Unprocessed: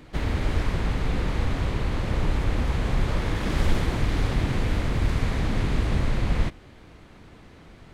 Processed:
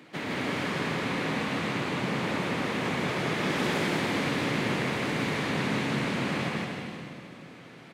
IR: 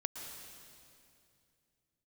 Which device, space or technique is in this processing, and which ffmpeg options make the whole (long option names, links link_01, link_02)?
stadium PA: -filter_complex "[0:a]highpass=frequency=160:width=0.5412,highpass=frequency=160:width=1.3066,equalizer=frequency=2300:width_type=o:width=1.2:gain=4.5,aecho=1:1:157.4|233.2:0.708|0.282[link_01];[1:a]atrim=start_sample=2205[link_02];[link_01][link_02]afir=irnorm=-1:irlink=0,volume=-1dB"